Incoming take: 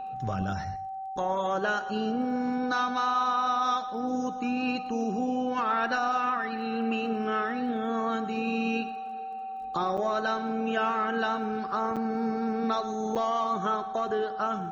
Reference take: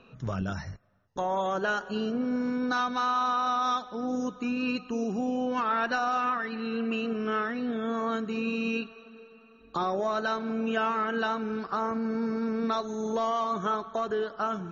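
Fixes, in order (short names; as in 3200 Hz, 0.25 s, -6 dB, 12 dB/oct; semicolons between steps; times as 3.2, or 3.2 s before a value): de-click; notch 770 Hz, Q 30; interpolate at 9.97/11.96/13.15, 6.7 ms; inverse comb 0.114 s -14.5 dB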